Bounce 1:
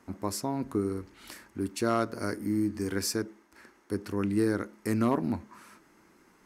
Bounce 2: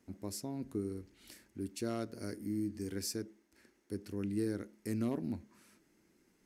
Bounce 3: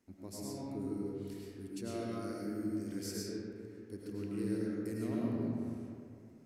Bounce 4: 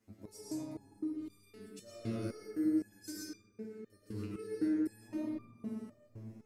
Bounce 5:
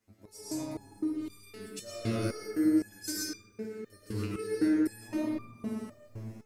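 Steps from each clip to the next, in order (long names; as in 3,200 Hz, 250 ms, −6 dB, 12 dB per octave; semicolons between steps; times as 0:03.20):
parametric band 1,100 Hz −13 dB 1.3 octaves; level −7 dB
convolution reverb RT60 2.5 s, pre-delay 65 ms, DRR −5.5 dB; level −6.5 dB
step-sequenced resonator 3.9 Hz 110–1,200 Hz; level +11.5 dB
parametric band 220 Hz −7 dB 2.6 octaves; automatic gain control gain up to 12 dB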